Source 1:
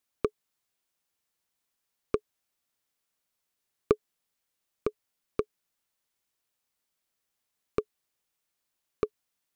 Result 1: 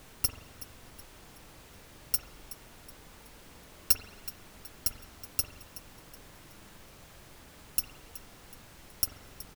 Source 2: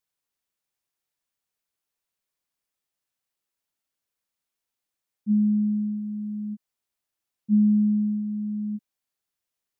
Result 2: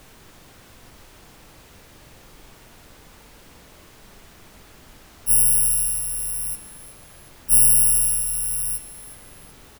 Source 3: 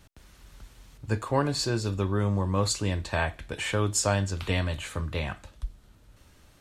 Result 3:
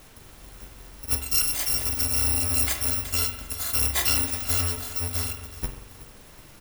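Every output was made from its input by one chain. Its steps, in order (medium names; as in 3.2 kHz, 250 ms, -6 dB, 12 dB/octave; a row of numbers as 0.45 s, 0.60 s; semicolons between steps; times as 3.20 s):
bit-reversed sample order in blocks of 256 samples; added noise pink -53 dBFS; feedback delay 373 ms, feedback 41%, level -16.5 dB; spring tank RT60 1 s, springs 44 ms, chirp 50 ms, DRR 6 dB; peak normalisation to -9 dBFS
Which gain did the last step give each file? -0.5 dB, +4.5 dB, +1.5 dB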